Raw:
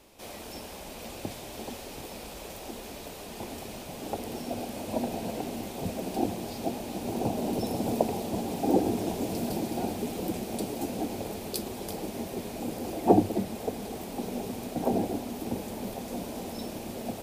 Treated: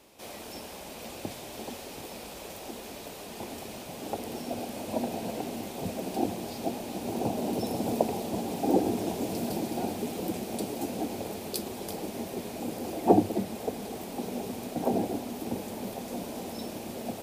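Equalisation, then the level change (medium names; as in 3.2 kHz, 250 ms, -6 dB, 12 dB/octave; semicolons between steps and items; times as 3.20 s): high-pass 100 Hz 6 dB/octave; 0.0 dB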